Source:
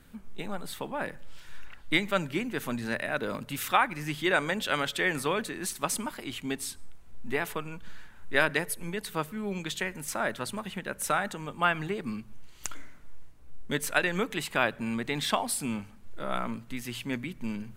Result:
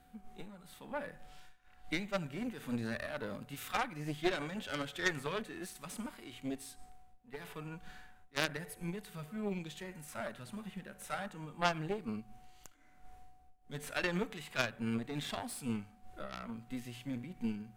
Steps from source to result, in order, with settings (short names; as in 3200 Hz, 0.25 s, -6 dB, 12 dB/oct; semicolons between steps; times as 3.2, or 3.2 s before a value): whine 740 Hz -60 dBFS; harmonic-percussive split percussive -14 dB; added harmonics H 3 -29 dB, 6 -11 dB, 7 -27 dB, 8 -20 dB, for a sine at -14 dBFS